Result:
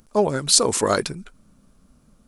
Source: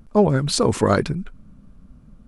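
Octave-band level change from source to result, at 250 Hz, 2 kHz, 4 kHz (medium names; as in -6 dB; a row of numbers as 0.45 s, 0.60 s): -6.5 dB, -0.5 dB, +6.0 dB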